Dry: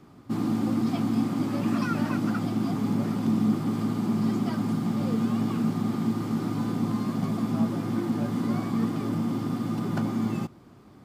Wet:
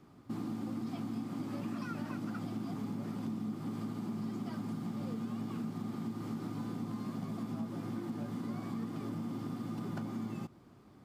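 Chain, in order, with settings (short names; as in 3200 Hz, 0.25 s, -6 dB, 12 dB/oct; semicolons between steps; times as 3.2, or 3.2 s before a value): compressor 4:1, threshold -29 dBFS, peak gain reduction 9 dB; gain -7 dB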